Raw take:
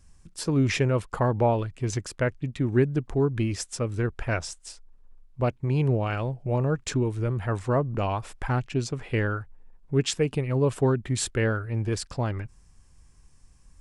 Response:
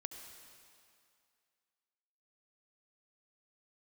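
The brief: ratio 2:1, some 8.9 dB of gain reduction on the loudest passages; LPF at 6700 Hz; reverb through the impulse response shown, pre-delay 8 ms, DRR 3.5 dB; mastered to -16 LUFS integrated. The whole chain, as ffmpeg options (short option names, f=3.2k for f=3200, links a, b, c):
-filter_complex "[0:a]lowpass=6.7k,acompressor=threshold=-34dB:ratio=2,asplit=2[a][b];[1:a]atrim=start_sample=2205,adelay=8[c];[b][c]afir=irnorm=-1:irlink=0,volume=-0.5dB[d];[a][d]amix=inputs=2:normalize=0,volume=15.5dB"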